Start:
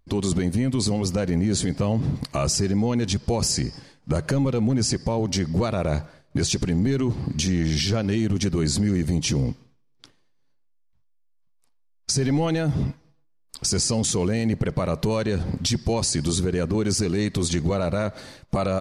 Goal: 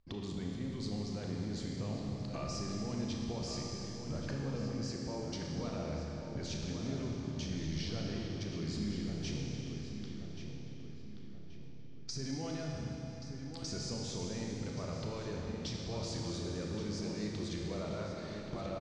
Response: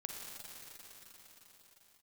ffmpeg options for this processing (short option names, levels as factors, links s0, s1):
-filter_complex "[0:a]lowpass=f=5800:w=0.5412,lowpass=f=5800:w=1.3066,acompressor=threshold=0.0158:ratio=2.5,asplit=2[s0][s1];[s1]adelay=1129,lowpass=f=3400:p=1,volume=0.422,asplit=2[s2][s3];[s3]adelay=1129,lowpass=f=3400:p=1,volume=0.44,asplit=2[s4][s5];[s5]adelay=1129,lowpass=f=3400:p=1,volume=0.44,asplit=2[s6][s7];[s7]adelay=1129,lowpass=f=3400:p=1,volume=0.44,asplit=2[s8][s9];[s9]adelay=1129,lowpass=f=3400:p=1,volume=0.44[s10];[s0][s2][s4][s6][s8][s10]amix=inputs=6:normalize=0[s11];[1:a]atrim=start_sample=2205,asetrate=66150,aresample=44100[s12];[s11][s12]afir=irnorm=-1:irlink=0,volume=0.891"